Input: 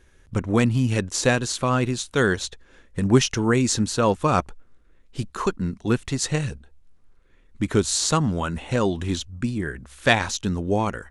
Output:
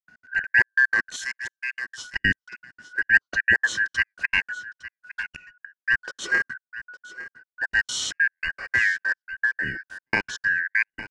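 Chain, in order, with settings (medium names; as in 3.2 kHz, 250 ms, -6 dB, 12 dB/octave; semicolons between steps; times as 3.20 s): four frequency bands reordered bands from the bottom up 2143; harmonic-percussive split harmonic +8 dB; trance gate ".x.xxx.x..x" 194 bpm -60 dB; 5.23–5.73 s: inverted gate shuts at -18 dBFS, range -24 dB; peaking EQ 9.9 kHz -15 dB 0.88 oct; gate with hold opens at -42 dBFS; 1.16–1.98 s: differentiator; on a send: delay 859 ms -16 dB; on the sum: trim -4.5 dB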